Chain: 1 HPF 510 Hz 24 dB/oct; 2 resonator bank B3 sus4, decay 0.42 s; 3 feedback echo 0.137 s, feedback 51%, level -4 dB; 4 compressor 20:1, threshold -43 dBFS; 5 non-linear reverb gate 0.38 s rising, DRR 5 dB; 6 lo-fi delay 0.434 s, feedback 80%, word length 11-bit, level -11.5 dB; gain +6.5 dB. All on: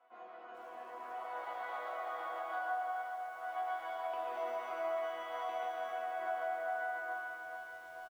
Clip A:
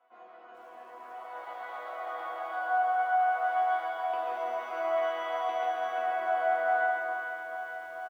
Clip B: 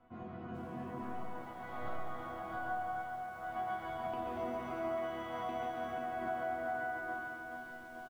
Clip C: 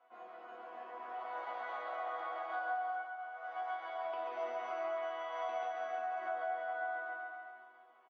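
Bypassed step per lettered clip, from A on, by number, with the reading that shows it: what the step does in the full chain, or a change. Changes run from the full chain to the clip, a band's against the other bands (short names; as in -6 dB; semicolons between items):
4, mean gain reduction 5.5 dB; 1, 250 Hz band +18.0 dB; 6, momentary loudness spread change +1 LU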